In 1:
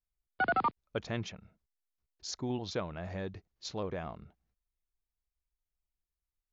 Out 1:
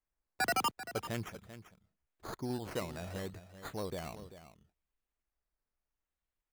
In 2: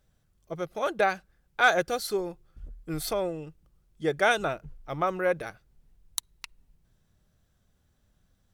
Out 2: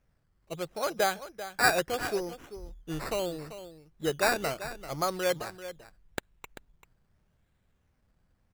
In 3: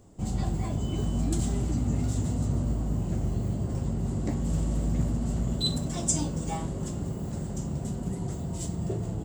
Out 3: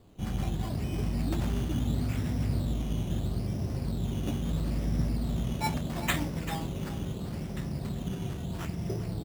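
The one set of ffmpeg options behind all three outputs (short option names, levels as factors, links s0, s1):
-filter_complex "[0:a]acrusher=samples=11:mix=1:aa=0.000001:lfo=1:lforange=6.6:lforate=0.76,asplit=2[s0][s1];[s1]aecho=0:1:390:0.224[s2];[s0][s2]amix=inputs=2:normalize=0,volume=0.75"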